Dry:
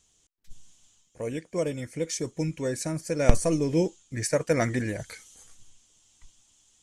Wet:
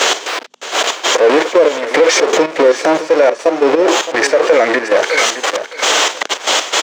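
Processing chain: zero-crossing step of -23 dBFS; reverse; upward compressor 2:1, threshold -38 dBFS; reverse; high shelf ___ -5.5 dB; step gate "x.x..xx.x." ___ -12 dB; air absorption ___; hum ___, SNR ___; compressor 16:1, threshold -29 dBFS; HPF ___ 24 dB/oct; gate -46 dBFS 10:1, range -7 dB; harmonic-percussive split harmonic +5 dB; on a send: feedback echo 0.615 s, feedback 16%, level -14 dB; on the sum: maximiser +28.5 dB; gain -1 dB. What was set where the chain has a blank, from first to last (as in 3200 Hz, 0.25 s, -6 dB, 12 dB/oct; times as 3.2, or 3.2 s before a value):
2000 Hz, 116 bpm, 170 m, 50 Hz, 33 dB, 430 Hz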